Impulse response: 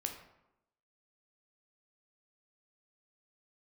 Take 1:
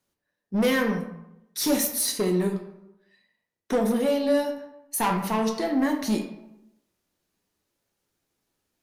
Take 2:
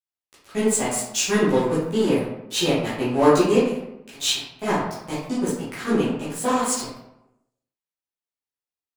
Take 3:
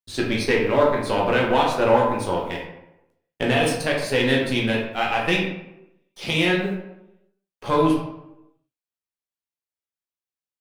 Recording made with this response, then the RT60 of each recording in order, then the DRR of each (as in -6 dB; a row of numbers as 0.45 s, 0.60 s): 1; 0.90 s, 0.90 s, 0.90 s; 3.5 dB, -11.5 dB, -2.5 dB